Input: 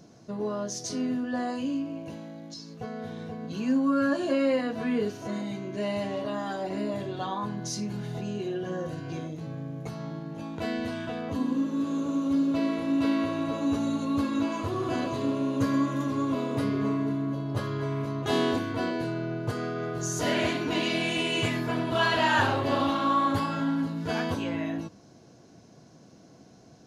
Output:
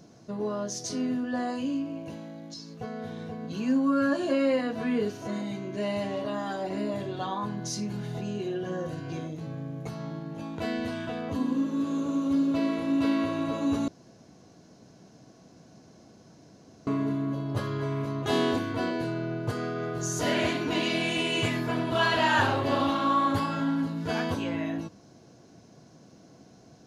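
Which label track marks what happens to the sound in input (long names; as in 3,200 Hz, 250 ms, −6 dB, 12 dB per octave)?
13.880000	16.870000	fill with room tone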